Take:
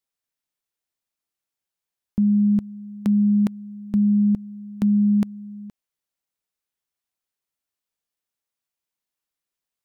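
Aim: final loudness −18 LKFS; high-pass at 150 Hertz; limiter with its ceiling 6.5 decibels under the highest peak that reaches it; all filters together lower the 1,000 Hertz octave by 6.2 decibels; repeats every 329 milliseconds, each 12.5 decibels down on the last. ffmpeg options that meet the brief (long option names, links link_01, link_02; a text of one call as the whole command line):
ffmpeg -i in.wav -af "highpass=150,equalizer=frequency=1000:width_type=o:gain=-8.5,alimiter=limit=-21.5dB:level=0:latency=1,aecho=1:1:329|658|987:0.237|0.0569|0.0137,volume=10.5dB" out.wav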